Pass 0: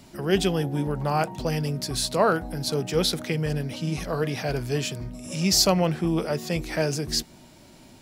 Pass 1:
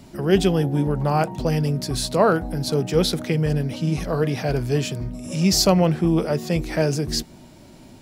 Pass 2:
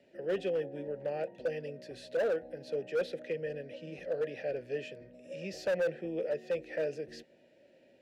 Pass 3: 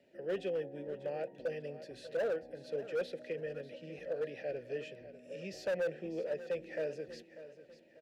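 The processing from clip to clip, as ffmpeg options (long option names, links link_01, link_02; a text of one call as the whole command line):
ffmpeg -i in.wav -af "tiltshelf=frequency=790:gain=3,volume=3dB" out.wav
ffmpeg -i in.wav -filter_complex "[0:a]acrossover=split=140|930|7100[link_01][link_02][link_03][link_04];[link_03]asoftclip=type=tanh:threshold=-23dB[link_05];[link_01][link_02][link_05][link_04]amix=inputs=4:normalize=0,asplit=3[link_06][link_07][link_08];[link_06]bandpass=frequency=530:width_type=q:width=8,volume=0dB[link_09];[link_07]bandpass=frequency=1840:width_type=q:width=8,volume=-6dB[link_10];[link_08]bandpass=frequency=2480:width_type=q:width=8,volume=-9dB[link_11];[link_09][link_10][link_11]amix=inputs=3:normalize=0,asoftclip=type=hard:threshold=-25dB,volume=-1.5dB" out.wav
ffmpeg -i in.wav -af "aecho=1:1:593|1186|1779|2372:0.188|0.0735|0.0287|0.0112,volume=-3.5dB" out.wav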